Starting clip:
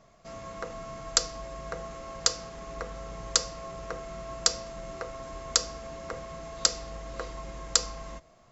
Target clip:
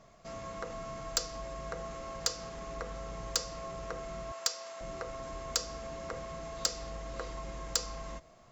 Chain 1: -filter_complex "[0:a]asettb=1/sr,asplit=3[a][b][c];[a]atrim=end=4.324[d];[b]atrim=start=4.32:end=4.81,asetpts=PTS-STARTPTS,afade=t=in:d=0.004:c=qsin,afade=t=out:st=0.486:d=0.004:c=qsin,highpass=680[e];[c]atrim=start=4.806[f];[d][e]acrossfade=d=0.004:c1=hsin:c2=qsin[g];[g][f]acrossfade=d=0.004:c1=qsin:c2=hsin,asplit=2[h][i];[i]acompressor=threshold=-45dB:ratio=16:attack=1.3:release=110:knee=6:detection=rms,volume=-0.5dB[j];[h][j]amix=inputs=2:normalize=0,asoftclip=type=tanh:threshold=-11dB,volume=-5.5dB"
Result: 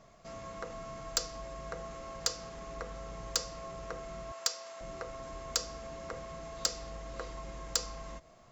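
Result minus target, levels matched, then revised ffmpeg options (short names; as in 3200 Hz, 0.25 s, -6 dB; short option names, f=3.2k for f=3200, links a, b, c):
compressor: peak gain reduction +8 dB
-filter_complex "[0:a]asettb=1/sr,asplit=3[a][b][c];[a]atrim=end=4.324[d];[b]atrim=start=4.32:end=4.81,asetpts=PTS-STARTPTS,afade=t=in:d=0.004:c=qsin,afade=t=out:st=0.486:d=0.004:c=qsin,highpass=680[e];[c]atrim=start=4.806[f];[d][e]acrossfade=d=0.004:c1=hsin:c2=qsin[g];[g][f]acrossfade=d=0.004:c1=qsin:c2=hsin,asplit=2[h][i];[i]acompressor=threshold=-36.5dB:ratio=16:attack=1.3:release=110:knee=6:detection=rms,volume=-0.5dB[j];[h][j]amix=inputs=2:normalize=0,asoftclip=type=tanh:threshold=-11dB,volume=-5.5dB"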